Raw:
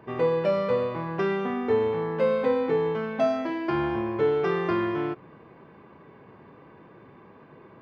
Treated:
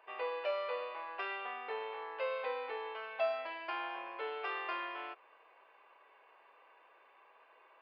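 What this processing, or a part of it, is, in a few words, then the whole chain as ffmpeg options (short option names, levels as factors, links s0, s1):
musical greeting card: -af "aresample=11025,aresample=44100,highpass=f=610:w=0.5412,highpass=f=610:w=1.3066,equalizer=f=2700:t=o:w=0.37:g=9,volume=0.398"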